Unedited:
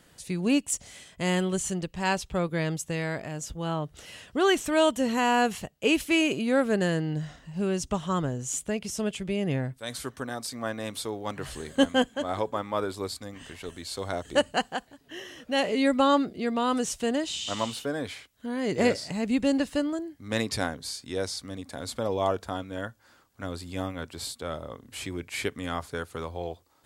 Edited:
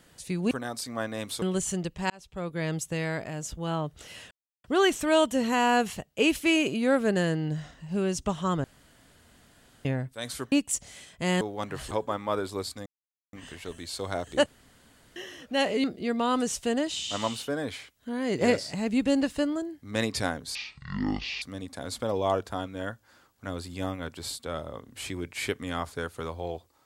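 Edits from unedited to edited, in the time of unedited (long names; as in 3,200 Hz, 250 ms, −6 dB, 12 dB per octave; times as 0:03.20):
0:00.51–0:01.40: swap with 0:10.17–0:11.08
0:02.08–0:02.77: fade in
0:04.29: splice in silence 0.33 s
0:08.29–0:09.50: fill with room tone
0:11.58–0:12.36: remove
0:13.31: splice in silence 0.47 s
0:14.44–0:15.14: fill with room tone
0:15.82–0:16.21: remove
0:20.92–0:21.38: play speed 53%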